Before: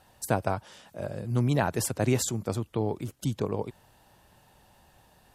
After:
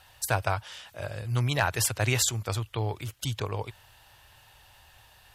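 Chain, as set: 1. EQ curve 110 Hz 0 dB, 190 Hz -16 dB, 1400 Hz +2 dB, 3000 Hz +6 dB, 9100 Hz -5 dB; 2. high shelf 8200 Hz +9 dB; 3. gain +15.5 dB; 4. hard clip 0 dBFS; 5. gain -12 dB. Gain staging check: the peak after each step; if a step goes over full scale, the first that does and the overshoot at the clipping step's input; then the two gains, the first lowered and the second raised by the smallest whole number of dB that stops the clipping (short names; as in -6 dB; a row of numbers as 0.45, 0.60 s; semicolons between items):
-11.0, -10.5, +5.0, 0.0, -12.0 dBFS; step 3, 5.0 dB; step 3 +10.5 dB, step 5 -7 dB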